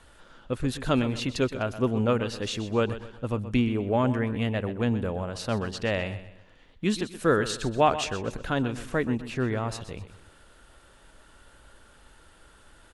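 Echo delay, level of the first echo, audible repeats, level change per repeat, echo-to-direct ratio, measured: 0.126 s, -13.0 dB, 3, -8.5 dB, -12.5 dB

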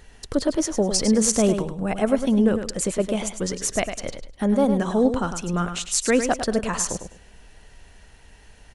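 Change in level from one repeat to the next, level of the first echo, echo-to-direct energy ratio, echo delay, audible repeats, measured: -13.0 dB, -8.5 dB, -8.5 dB, 0.103 s, 3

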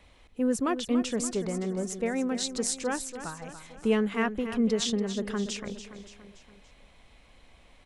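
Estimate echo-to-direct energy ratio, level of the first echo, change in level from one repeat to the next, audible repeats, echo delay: -9.5 dB, -11.0 dB, -6.0 dB, 4, 0.286 s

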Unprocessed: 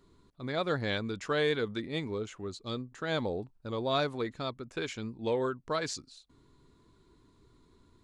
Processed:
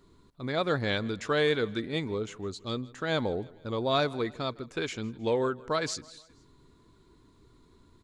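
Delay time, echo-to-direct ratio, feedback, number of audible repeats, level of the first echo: 0.158 s, -21.0 dB, 50%, 3, -22.0 dB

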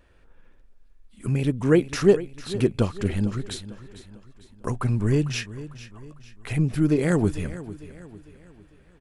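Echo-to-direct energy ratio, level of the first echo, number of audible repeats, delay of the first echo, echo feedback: -14.5 dB, -15.5 dB, 3, 0.45 s, 43%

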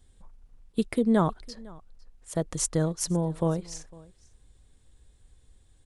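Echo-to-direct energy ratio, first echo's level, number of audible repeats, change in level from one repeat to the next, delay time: -23.5 dB, -23.5 dB, 1, no steady repeat, 0.504 s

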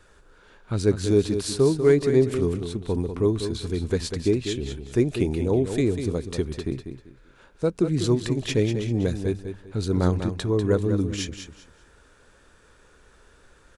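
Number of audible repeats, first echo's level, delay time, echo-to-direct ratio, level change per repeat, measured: 3, -8.5 dB, 0.195 s, -8.0 dB, -12.0 dB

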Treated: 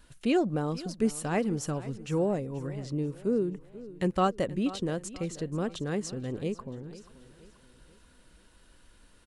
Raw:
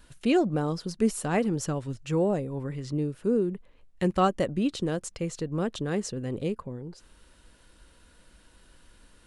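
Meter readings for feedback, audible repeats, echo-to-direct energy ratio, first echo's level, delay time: 43%, 3, -16.0 dB, -17.0 dB, 0.483 s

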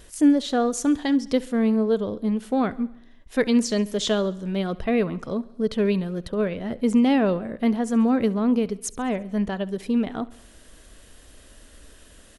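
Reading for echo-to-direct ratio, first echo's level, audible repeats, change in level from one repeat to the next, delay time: -19.0 dB, -21.0 dB, 4, -4.5 dB, 68 ms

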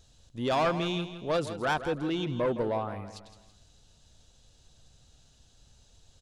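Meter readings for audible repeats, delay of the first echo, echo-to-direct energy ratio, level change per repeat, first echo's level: 4, 0.164 s, -11.0 dB, -7.5 dB, -12.0 dB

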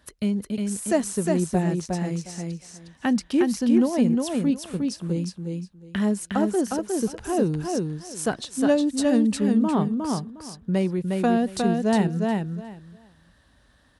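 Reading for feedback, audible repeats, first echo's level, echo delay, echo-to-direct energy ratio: 18%, 3, -3.5 dB, 0.359 s, -3.5 dB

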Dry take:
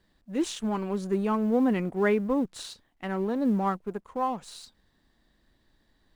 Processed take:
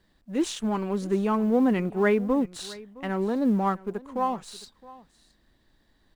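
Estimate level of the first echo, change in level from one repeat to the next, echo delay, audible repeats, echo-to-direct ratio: -20.5 dB, no steady repeat, 0.665 s, 1, -20.5 dB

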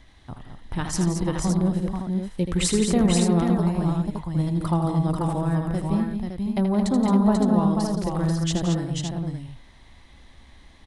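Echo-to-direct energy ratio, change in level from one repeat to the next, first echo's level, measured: 0.0 dB, no steady repeat, -8.0 dB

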